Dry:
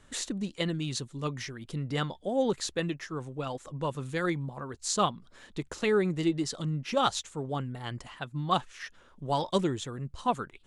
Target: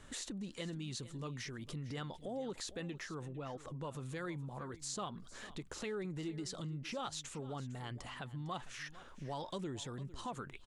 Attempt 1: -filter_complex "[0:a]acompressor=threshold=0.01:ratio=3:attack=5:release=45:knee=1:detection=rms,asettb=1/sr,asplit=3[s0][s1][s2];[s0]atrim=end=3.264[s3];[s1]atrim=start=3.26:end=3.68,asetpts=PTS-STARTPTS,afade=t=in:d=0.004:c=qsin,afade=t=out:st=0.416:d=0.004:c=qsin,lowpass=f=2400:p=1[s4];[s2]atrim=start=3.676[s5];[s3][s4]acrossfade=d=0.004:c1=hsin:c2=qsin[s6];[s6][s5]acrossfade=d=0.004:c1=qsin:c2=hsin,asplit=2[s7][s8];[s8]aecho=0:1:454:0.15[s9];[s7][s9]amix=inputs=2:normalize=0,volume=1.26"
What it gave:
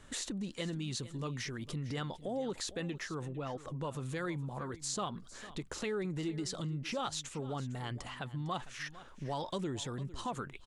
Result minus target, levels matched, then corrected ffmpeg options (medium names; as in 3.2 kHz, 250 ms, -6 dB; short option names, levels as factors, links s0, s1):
compression: peak gain reduction -4.5 dB
-filter_complex "[0:a]acompressor=threshold=0.00447:ratio=3:attack=5:release=45:knee=1:detection=rms,asettb=1/sr,asplit=3[s0][s1][s2];[s0]atrim=end=3.264[s3];[s1]atrim=start=3.26:end=3.68,asetpts=PTS-STARTPTS,afade=t=in:d=0.004:c=qsin,afade=t=out:st=0.416:d=0.004:c=qsin,lowpass=f=2400:p=1[s4];[s2]atrim=start=3.676[s5];[s3][s4]acrossfade=d=0.004:c1=hsin:c2=qsin[s6];[s6][s5]acrossfade=d=0.004:c1=qsin:c2=hsin,asplit=2[s7][s8];[s8]aecho=0:1:454:0.15[s9];[s7][s9]amix=inputs=2:normalize=0,volume=1.26"